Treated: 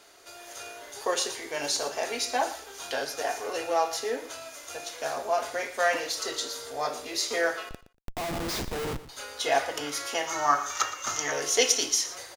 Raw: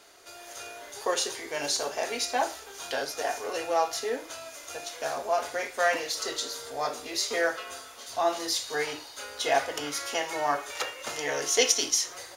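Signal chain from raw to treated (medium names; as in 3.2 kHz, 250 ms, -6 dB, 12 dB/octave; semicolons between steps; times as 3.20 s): 7.69–9.09 s: Schmitt trigger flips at -30.5 dBFS; 10.27–11.32 s: graphic EQ with 31 bands 100 Hz +10 dB, 500 Hz -11 dB, 1.25 kHz +12 dB, 2.5 kHz -4 dB, 6.3 kHz +12 dB, 10 kHz -8 dB; on a send: feedback delay 118 ms, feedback 16%, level -15 dB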